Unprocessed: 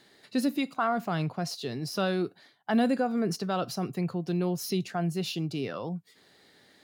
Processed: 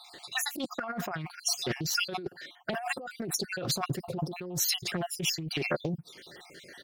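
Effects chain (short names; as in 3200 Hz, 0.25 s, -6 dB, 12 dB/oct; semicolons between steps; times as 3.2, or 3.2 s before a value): random spectral dropouts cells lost 56%; bell 200 Hz -9.5 dB 0.39 oct; comb 5.6 ms, depth 49%; negative-ratio compressor -39 dBFS, ratio -1; Doppler distortion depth 0.61 ms; gain +6.5 dB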